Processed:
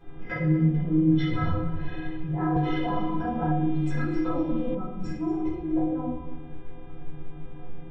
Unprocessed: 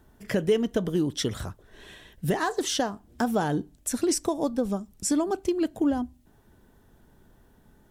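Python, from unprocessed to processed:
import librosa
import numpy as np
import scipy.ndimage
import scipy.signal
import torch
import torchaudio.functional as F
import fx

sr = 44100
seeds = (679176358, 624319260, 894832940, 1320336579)

y = fx.env_lowpass_down(x, sr, base_hz=1700.0, full_db=-22.0)
y = fx.high_shelf(y, sr, hz=4000.0, db=-6.5)
y = fx.over_compress(y, sr, threshold_db=-35.0, ratio=-1.0)
y = fx.stiff_resonator(y, sr, f0_hz=150.0, decay_s=0.37, stiffness=0.03)
y = fx.dmg_buzz(y, sr, base_hz=400.0, harmonics=9, level_db=-70.0, tilt_db=-2, odd_only=False)
y = fx.spacing_loss(y, sr, db_at_10k=45)
y = y + 10.0 ** (-16.0 / 20.0) * np.pad(y, (int(238 * sr / 1000.0), 0))[:len(y)]
y = fx.room_shoebox(y, sr, seeds[0], volume_m3=300.0, walls='mixed', distance_m=4.9)
y = fx.band_squash(y, sr, depth_pct=100, at=(2.56, 4.75))
y = y * librosa.db_to_amplitude(8.5)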